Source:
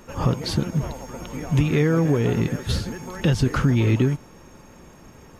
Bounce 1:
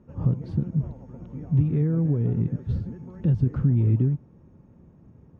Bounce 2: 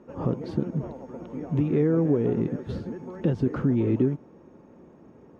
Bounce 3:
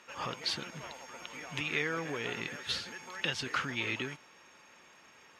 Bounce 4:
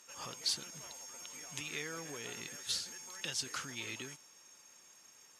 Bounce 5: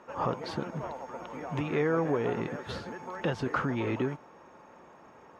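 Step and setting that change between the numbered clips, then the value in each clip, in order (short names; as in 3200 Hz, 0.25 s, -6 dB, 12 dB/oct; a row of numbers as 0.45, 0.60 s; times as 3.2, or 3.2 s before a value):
band-pass, frequency: 120, 330, 2700, 7200, 890 Hz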